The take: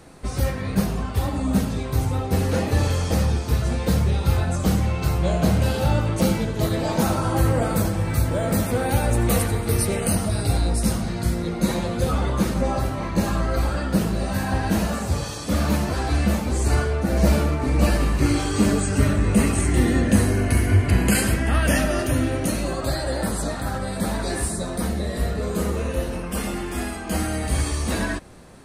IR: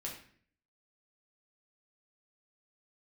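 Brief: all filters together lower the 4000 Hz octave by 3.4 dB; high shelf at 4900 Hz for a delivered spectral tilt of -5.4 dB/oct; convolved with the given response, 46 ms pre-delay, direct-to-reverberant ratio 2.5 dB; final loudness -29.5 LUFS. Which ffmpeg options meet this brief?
-filter_complex "[0:a]equalizer=f=4k:t=o:g=-6,highshelf=f=4.9k:g=3.5,asplit=2[a][b];[1:a]atrim=start_sample=2205,adelay=46[c];[b][c]afir=irnorm=-1:irlink=0,volume=-2dB[d];[a][d]amix=inputs=2:normalize=0,volume=-9.5dB"

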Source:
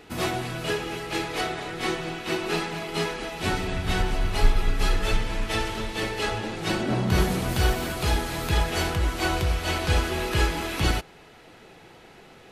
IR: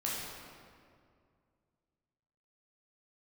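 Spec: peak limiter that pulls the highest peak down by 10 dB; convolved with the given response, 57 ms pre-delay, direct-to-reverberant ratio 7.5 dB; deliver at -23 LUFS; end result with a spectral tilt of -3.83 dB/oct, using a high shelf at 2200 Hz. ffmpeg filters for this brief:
-filter_complex "[0:a]highshelf=f=2.2k:g=5,alimiter=limit=-17dB:level=0:latency=1,asplit=2[a][b];[1:a]atrim=start_sample=2205,adelay=57[c];[b][c]afir=irnorm=-1:irlink=0,volume=-12dB[d];[a][d]amix=inputs=2:normalize=0,volume=4dB"

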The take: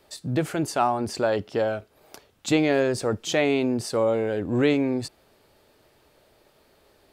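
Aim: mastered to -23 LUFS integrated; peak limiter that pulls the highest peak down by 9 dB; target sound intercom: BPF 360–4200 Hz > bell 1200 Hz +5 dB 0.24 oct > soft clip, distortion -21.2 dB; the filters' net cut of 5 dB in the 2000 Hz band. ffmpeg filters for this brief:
-af "equalizer=f=2k:t=o:g=-6.5,alimiter=limit=-19.5dB:level=0:latency=1,highpass=360,lowpass=4.2k,equalizer=f=1.2k:t=o:w=0.24:g=5,asoftclip=threshold=-21.5dB,volume=10dB"

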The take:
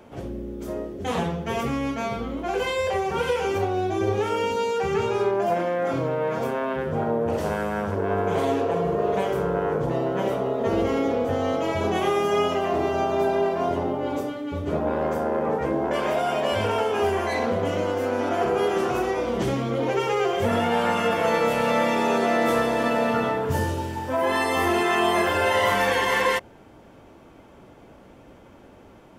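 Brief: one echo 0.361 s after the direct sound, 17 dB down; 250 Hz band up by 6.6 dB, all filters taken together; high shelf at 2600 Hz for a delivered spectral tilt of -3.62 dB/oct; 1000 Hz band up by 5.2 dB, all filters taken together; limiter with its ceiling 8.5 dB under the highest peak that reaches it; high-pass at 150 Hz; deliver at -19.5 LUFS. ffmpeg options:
-af "highpass=150,equalizer=f=250:t=o:g=8.5,equalizer=f=1k:t=o:g=5,highshelf=f=2.6k:g=8,alimiter=limit=-13dB:level=0:latency=1,aecho=1:1:361:0.141,volume=2.5dB"

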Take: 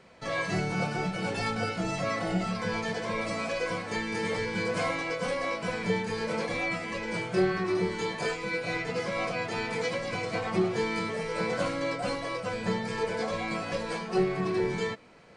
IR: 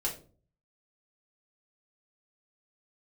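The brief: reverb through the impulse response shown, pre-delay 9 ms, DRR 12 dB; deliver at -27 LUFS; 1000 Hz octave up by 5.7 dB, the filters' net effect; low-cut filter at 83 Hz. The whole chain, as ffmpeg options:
-filter_complex "[0:a]highpass=83,equalizer=f=1k:t=o:g=7,asplit=2[a][b];[1:a]atrim=start_sample=2205,adelay=9[c];[b][c]afir=irnorm=-1:irlink=0,volume=-16dB[d];[a][d]amix=inputs=2:normalize=0,volume=1dB"

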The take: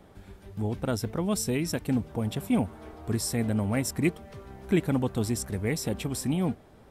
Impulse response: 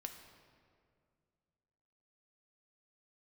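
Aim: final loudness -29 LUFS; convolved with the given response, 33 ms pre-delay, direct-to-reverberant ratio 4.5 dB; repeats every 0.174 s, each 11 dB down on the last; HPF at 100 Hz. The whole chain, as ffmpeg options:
-filter_complex "[0:a]highpass=100,aecho=1:1:174|348|522:0.282|0.0789|0.0221,asplit=2[a][b];[1:a]atrim=start_sample=2205,adelay=33[c];[b][c]afir=irnorm=-1:irlink=0,volume=-1dB[d];[a][d]amix=inputs=2:normalize=0,volume=-1dB"

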